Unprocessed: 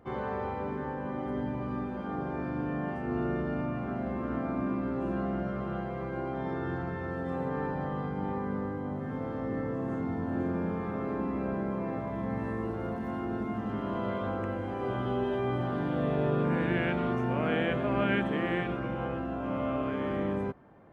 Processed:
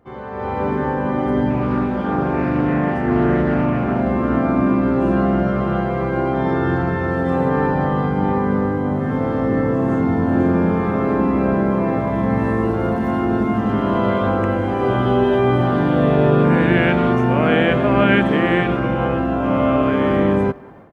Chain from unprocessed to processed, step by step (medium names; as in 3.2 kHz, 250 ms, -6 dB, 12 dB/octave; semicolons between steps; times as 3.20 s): level rider gain up to 15 dB; speakerphone echo 190 ms, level -22 dB; 1.50–4.01 s: loudspeaker Doppler distortion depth 0.23 ms